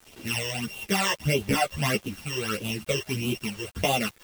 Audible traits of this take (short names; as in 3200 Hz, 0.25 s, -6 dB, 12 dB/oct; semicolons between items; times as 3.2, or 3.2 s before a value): a buzz of ramps at a fixed pitch in blocks of 16 samples; phasing stages 12, 1.6 Hz, lowest notch 230–1800 Hz; a quantiser's noise floor 8-bit, dither none; a shimmering, thickened sound